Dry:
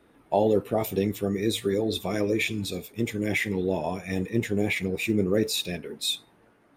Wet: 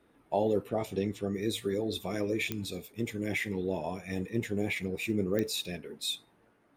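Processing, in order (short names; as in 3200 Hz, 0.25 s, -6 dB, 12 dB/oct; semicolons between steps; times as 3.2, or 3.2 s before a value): 0.69–1.34 LPF 7800 Hz 12 dB/oct; pops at 2.52/5.39, -11 dBFS; gain -6 dB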